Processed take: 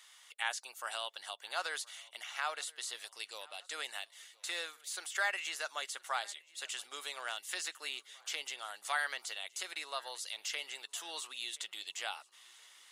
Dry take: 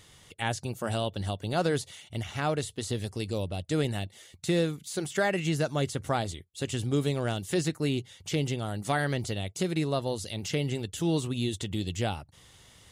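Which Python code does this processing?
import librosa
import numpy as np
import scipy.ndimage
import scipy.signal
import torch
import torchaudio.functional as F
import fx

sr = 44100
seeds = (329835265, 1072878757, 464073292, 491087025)

y = fx.ladder_highpass(x, sr, hz=830.0, resonance_pct=20)
y = fx.echo_feedback(y, sr, ms=1022, feedback_pct=53, wet_db=-24.0)
y = F.gain(torch.from_numpy(y), 2.5).numpy()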